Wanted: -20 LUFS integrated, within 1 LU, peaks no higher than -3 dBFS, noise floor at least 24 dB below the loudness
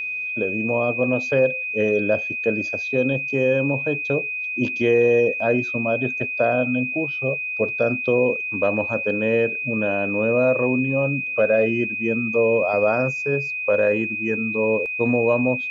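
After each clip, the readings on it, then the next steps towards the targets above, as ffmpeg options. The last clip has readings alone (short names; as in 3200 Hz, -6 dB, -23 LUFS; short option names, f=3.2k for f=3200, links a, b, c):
steady tone 2500 Hz; tone level -25 dBFS; loudness -21.0 LUFS; peak -8.0 dBFS; loudness target -20.0 LUFS
-> -af "bandreject=f=2.5k:w=30"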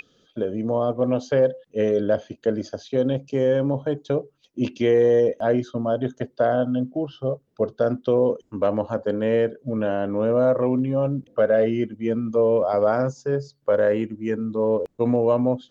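steady tone none; loudness -23.0 LUFS; peak -9.0 dBFS; loudness target -20.0 LUFS
-> -af "volume=3dB"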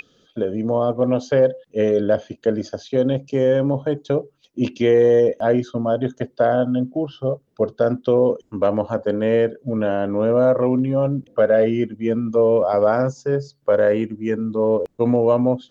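loudness -20.0 LUFS; peak -6.0 dBFS; noise floor -64 dBFS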